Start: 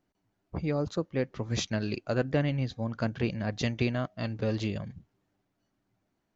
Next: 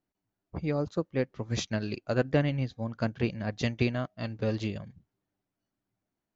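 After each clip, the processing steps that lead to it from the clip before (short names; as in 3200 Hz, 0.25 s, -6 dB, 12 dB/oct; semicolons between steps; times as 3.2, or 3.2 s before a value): upward expander 1.5:1, over -45 dBFS; gain +2.5 dB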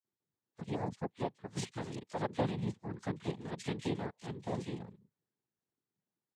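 bands offset in time highs, lows 40 ms, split 2800 Hz; noise vocoder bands 6; gain -7.5 dB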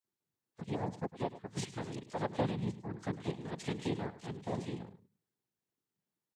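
echo 0.104 s -15 dB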